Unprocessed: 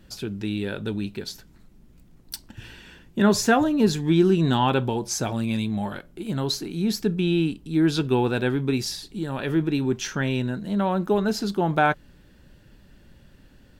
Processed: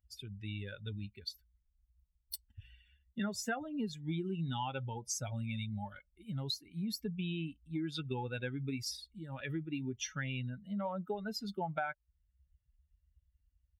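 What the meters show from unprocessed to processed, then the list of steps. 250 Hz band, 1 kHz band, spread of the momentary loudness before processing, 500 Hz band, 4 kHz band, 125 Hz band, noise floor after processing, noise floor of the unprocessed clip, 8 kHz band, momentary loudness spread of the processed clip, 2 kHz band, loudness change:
−17.0 dB, −16.0 dB, 14 LU, −18.5 dB, −11.5 dB, −13.0 dB, −80 dBFS, −53 dBFS, −11.0 dB, 9 LU, −14.0 dB, −16.0 dB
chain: spectral dynamics exaggerated over time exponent 2
high-pass filter 62 Hz
parametric band 2,000 Hz +3.5 dB 1.8 octaves
comb filter 1.4 ms, depth 44%
downward compressor 6 to 1, threshold −33 dBFS, peak gain reduction 18.5 dB
level −2 dB

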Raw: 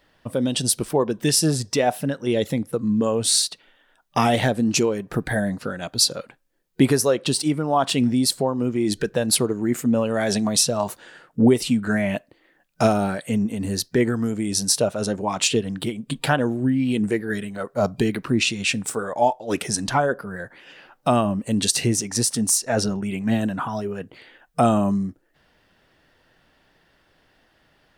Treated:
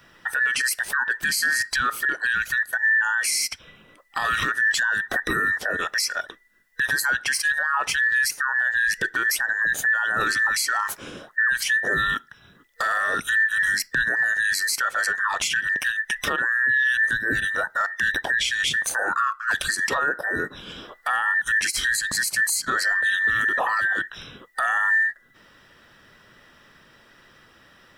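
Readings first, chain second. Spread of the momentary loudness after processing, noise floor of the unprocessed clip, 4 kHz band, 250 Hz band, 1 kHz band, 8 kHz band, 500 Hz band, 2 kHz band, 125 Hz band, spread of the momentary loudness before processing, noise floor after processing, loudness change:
7 LU, −62 dBFS, −2.5 dB, −20.0 dB, −0.5 dB, −4.0 dB, −14.0 dB, +14.0 dB, −18.5 dB, 9 LU, −55 dBFS, 0.0 dB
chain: frequency inversion band by band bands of 2,000 Hz
downward compressor 2 to 1, threshold −27 dBFS, peak gain reduction 9 dB
brickwall limiter −21.5 dBFS, peak gain reduction 10.5 dB
level +7.5 dB

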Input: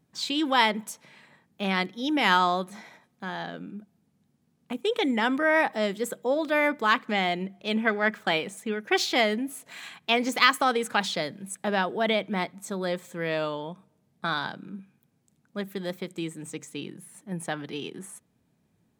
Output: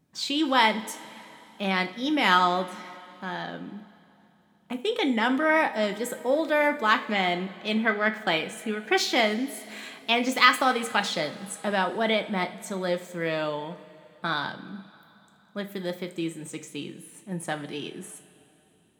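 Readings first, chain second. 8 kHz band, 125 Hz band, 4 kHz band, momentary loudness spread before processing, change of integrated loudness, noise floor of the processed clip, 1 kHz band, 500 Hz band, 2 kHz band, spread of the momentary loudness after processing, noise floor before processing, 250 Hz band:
+1.0 dB, 0.0 dB, +1.0 dB, 18 LU, +1.0 dB, −61 dBFS, +1.0 dB, +0.5 dB, +1.0 dB, 18 LU, −70 dBFS, +1.0 dB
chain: coupled-rooms reverb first 0.34 s, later 3.3 s, from −18 dB, DRR 6 dB

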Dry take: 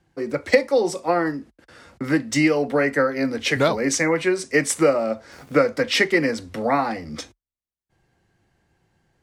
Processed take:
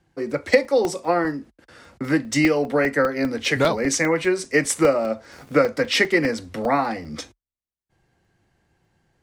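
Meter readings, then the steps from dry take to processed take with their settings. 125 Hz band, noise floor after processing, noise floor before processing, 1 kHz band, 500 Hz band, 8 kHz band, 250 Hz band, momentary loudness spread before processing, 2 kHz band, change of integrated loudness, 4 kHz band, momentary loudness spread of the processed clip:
0.0 dB, below −85 dBFS, below −85 dBFS, 0.0 dB, 0.0 dB, 0.0 dB, 0.0 dB, 10 LU, 0.0 dB, 0.0 dB, 0.0 dB, 10 LU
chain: regular buffer underruns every 0.20 s, samples 64, zero

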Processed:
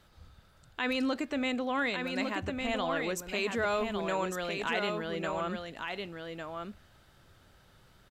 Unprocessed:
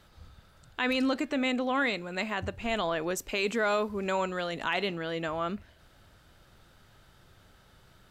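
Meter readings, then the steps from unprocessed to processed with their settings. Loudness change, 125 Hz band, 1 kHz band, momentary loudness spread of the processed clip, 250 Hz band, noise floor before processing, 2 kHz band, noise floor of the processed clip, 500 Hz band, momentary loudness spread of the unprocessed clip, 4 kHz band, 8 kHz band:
−2.5 dB, −1.5 dB, −2.0 dB, 10 LU, −2.0 dB, −60 dBFS, −2.0 dB, −62 dBFS, −2.0 dB, 6 LU, −2.0 dB, −2.0 dB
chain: single-tap delay 1,154 ms −5 dB
level −3 dB

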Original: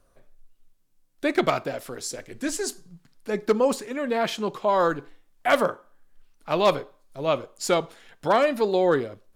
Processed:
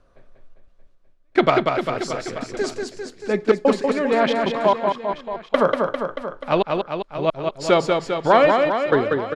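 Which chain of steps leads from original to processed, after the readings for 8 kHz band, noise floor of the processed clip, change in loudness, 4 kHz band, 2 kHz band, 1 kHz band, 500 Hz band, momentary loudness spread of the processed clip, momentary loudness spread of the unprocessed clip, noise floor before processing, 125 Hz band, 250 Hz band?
−5.0 dB, −55 dBFS, +4.5 dB, +3.0 dB, +4.5 dB, +5.0 dB, +5.0 dB, 11 LU, 12 LU, −63 dBFS, +5.5 dB, +5.0 dB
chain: low-pass filter 4,000 Hz 12 dB per octave
gate pattern "xxxx.xx...xx.x" 111 BPM −60 dB
on a send: reverse bouncing-ball delay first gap 190 ms, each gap 1.1×, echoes 5
on the sum: level +5.5 dB

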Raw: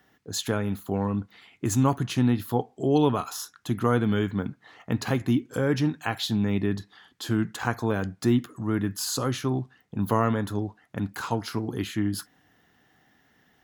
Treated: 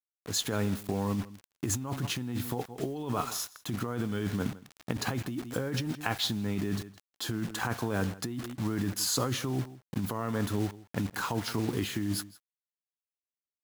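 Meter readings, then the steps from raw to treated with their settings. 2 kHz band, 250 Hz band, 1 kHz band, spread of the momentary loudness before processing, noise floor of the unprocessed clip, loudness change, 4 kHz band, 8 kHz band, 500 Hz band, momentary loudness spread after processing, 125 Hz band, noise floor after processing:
−3.5 dB, −7.0 dB, −6.5 dB, 9 LU, −65 dBFS, −5.5 dB, 0.0 dB, +0.5 dB, −7.5 dB, 6 LU, −6.0 dB, below −85 dBFS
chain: bit reduction 7 bits
on a send: single-tap delay 164 ms −21 dB
on the sum: compressor whose output falls as the input rises −28 dBFS, ratio −1
level −3 dB

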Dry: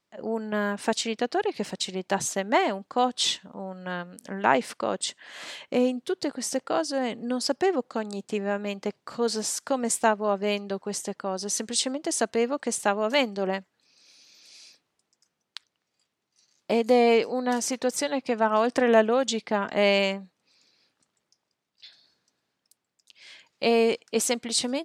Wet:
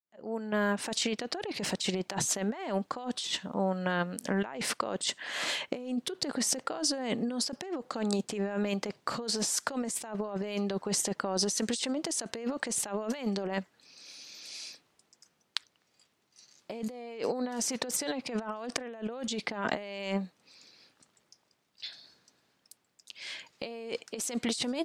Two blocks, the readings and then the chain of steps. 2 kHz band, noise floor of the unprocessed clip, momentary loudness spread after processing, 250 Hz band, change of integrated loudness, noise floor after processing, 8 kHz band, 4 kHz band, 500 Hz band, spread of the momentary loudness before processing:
−6.5 dB, −81 dBFS, 11 LU, −4.5 dB, −7.0 dB, −74 dBFS, −2.0 dB, −3.5 dB, −10.0 dB, 11 LU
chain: fade in at the beginning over 1.53 s
compressor whose output falls as the input rises −34 dBFS, ratio −1

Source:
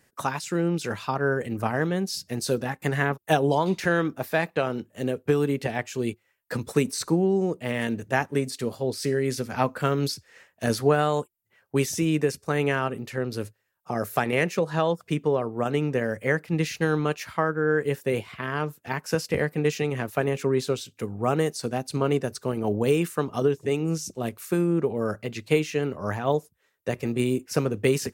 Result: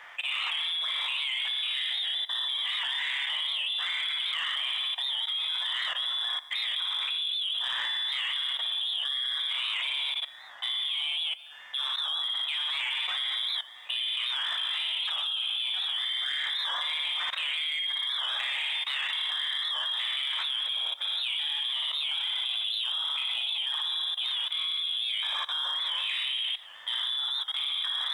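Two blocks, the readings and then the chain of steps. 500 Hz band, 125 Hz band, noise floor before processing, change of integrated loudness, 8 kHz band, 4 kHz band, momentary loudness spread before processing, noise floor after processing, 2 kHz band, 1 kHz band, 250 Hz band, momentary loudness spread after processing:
below −30 dB, below −40 dB, −71 dBFS, −1.5 dB, −14.0 dB, +15.5 dB, 7 LU, −48 dBFS, −2.5 dB, −11.5 dB, below −40 dB, 1 LU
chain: spike at every zero crossing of −26 dBFS
brickwall limiter −14.5 dBFS, peak gain reduction 6.5 dB
voice inversion scrambler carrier 3,700 Hz
downward compressor 6 to 1, threshold −25 dBFS, peak gain reduction 7 dB
high-pass filter 690 Hz 24 dB per octave
reverb reduction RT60 1.8 s
flutter between parallel walls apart 10 metres, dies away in 0.7 s
reverb whose tail is shaped and stops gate 490 ms falling, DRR −1.5 dB
output level in coarse steps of 17 dB
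leveller curve on the samples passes 1
wow of a warped record 78 rpm, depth 100 cents

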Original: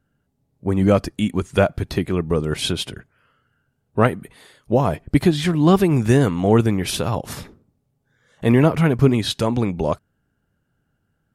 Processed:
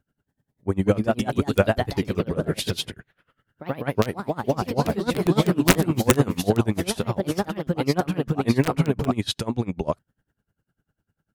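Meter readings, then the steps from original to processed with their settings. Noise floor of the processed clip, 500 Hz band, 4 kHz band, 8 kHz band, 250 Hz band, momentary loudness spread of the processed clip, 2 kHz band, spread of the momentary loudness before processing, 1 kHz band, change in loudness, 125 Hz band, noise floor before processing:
−84 dBFS, −3.5 dB, −2.5 dB, +1.0 dB, −4.0 dB, 8 LU, −1.5 dB, 11 LU, −2.5 dB, −4.5 dB, −4.5 dB, −71 dBFS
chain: delay with pitch and tempo change per echo 267 ms, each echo +2 semitones, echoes 3
wrap-around overflow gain 3 dB
tremolo with a sine in dB 10 Hz, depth 23 dB

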